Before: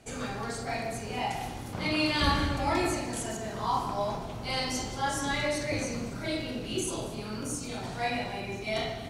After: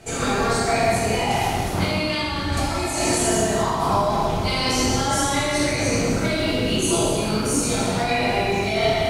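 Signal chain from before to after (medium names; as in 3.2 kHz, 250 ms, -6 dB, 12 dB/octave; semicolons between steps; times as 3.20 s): 2.52–3.18 s: peaking EQ 8.2 kHz +10.5 dB 1.7 oct; compressor with a negative ratio -33 dBFS, ratio -1; gated-style reverb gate 440 ms falling, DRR -4.5 dB; trim +6.5 dB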